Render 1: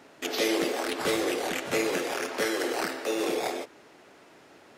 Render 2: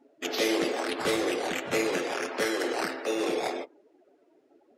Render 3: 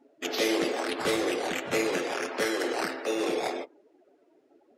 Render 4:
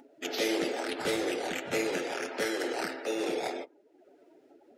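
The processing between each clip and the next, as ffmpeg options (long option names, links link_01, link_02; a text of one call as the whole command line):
ffmpeg -i in.wav -af "afftdn=noise_reduction=23:noise_floor=-45" out.wav
ffmpeg -i in.wav -af anull out.wav
ffmpeg -i in.wav -af "bandreject=frequency=1100:width=6.2,acompressor=mode=upward:threshold=-47dB:ratio=2.5,volume=-3dB" out.wav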